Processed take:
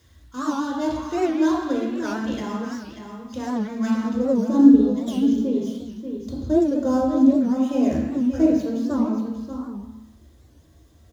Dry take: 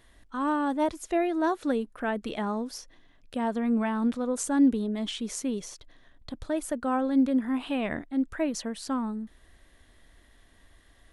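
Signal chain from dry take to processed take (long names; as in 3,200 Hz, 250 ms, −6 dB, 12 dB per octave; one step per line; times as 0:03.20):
gap after every zero crossing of 0.058 ms
high-shelf EQ 5,900 Hz −6 dB
single-tap delay 586 ms −8.5 dB
reverb reduction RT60 0.97 s
parametric band 520 Hz −9 dB 2.2 octaves, from 0:04.12 2,000 Hz
convolution reverb RT60 1.0 s, pre-delay 3 ms, DRR −4.5 dB
bit reduction 11 bits
wow of a warped record 78 rpm, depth 160 cents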